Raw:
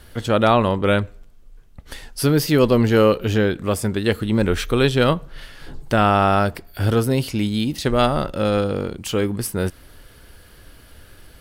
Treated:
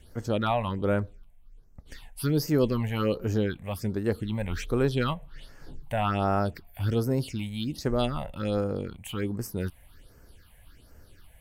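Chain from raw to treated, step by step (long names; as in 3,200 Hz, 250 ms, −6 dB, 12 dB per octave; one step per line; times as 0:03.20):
all-pass phaser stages 6, 1.3 Hz, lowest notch 330–3,600 Hz
level −8 dB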